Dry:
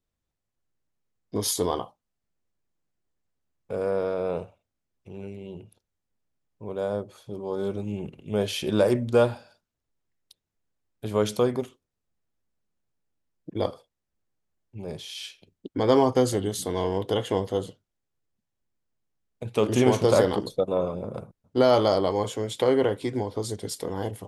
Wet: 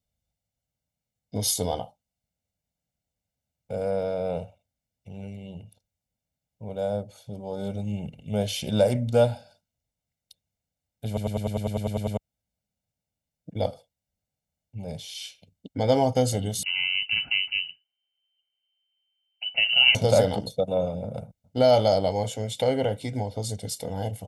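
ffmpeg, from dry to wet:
-filter_complex "[0:a]asettb=1/sr,asplit=3[a][b][c];[a]atrim=end=16.634[d];[b]atrim=start=16.63:end=19.95,asetpts=PTS-STARTPTS,afade=t=in:d=0.004:c=qsin,afade=t=out:st=3.316:d=0.004:c=qsin,lowpass=f=2.6k:t=q:w=0.5098,lowpass=f=2.6k:t=q:w=0.6013,lowpass=f=2.6k:t=q:w=0.9,lowpass=f=2.6k:t=q:w=2.563,afreqshift=-3100[e];[c]atrim=start=19.946[f];[d][e]acrossfade=d=0.004:c1=hsin:c2=qsin[g];[g][f]acrossfade=d=0.004:c1=qsin:c2=hsin,asplit=12[h][i][j][k][l][m][n][o][p][q][r][s];[h]atrim=end=11.172[t];[i]atrim=start=11.068:end=11.172[u];[j]atrim=start=11.068:end=11.172[v];[k]atrim=start=11.068:end=11.172[w];[l]atrim=start=11.068:end=11.172[x];[m]atrim=start=11.068:end=11.172[y];[n]atrim=start=11.068:end=11.172[z];[o]atrim=start=11.068:end=11.172[aa];[p]atrim=start=11.068:end=11.172[ab];[q]atrim=start=11.068:end=11.172[ac];[r]atrim=start=11.068:end=11.172[ad];[s]atrim=start=12.168[ae];[t][u]acrossfade=d=0.004:c1=hsin:c2=hsin[af];[af][v]acrossfade=d=0.004:c1=hsin:c2=hsin[ag];[ag][w]acrossfade=d=0.004:c1=hsin:c2=hsin[ah];[ah][x]acrossfade=d=0.004:c1=hsin:c2=hsin[ai];[ai][y]acrossfade=d=0.004:c1=hsin:c2=hsin[aj];[aj][z]acrossfade=d=0.004:c1=hsin:c2=hsin[ak];[ak][aa]acrossfade=d=0.004:c1=hsin:c2=hsin[al];[al][ab]acrossfade=d=0.004:c1=hsin:c2=hsin[am];[am][ac]acrossfade=d=0.004:c1=hsin:c2=hsin[an];[an][ad]acrossfade=d=0.004:c1=hsin:c2=hsin[ao];[ao][ae]acrossfade=d=0.004:c1=hsin:c2=hsin,highpass=46,equalizer=f=1.3k:t=o:w=0.92:g=-11.5,aecho=1:1:1.4:0.79"

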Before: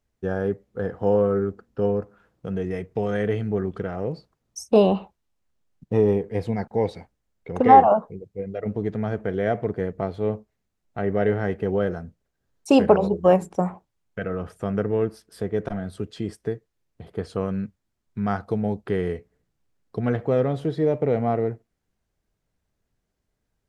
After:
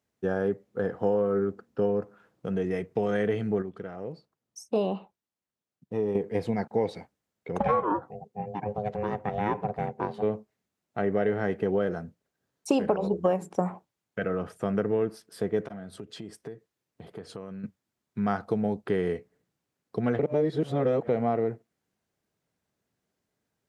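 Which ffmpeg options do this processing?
-filter_complex "[0:a]asplit=3[a][b][c];[a]afade=t=out:st=7.58:d=0.02[d];[b]aeval=exprs='val(0)*sin(2*PI*310*n/s)':c=same,afade=t=in:st=7.58:d=0.02,afade=t=out:st=10.21:d=0.02[e];[c]afade=t=in:st=10.21:d=0.02[f];[d][e][f]amix=inputs=3:normalize=0,asettb=1/sr,asplit=3[g][h][i];[g]atrim=end=15.614[j];[h]atrim=start=15.61:end=17.64,asetpts=PTS-STARTPTS,afade=t=in:d=0.004:c=qsin,afade=t=out:st=2.026:d=0.004:c=qsin,acompressor=threshold=-36dB:ratio=4:attack=3.2:release=140:knee=1:detection=peak[k];[i]atrim=start=17.636[l];[j][k]acrossfade=d=0.004:c1=hsin:c2=qsin[m];[m][l]acrossfade=d=0.004:c1=qsin:c2=hsin,asplit=5[n][o][p][q][r];[n]atrim=end=3.622[s];[o]atrim=start=3.618:end=6.152,asetpts=PTS-STARTPTS,volume=-8.5dB[t];[p]atrim=start=6.148:end=20.192[u];[q]atrim=start=20.188:end=21.092,asetpts=PTS-STARTPTS,areverse[v];[r]atrim=start=21.088[w];[s][t]acrossfade=d=0.004:c1=hsin:c2=hsin[x];[x][u]acrossfade=d=0.004:c1=hsin:c2=hsin[y];[y][v]acrossfade=d=0.004:c1=hsin:c2=hsin[z];[z][w]acrossfade=d=0.004:c1=hsin:c2=hsin,acompressor=threshold=-20dB:ratio=12,highpass=140"

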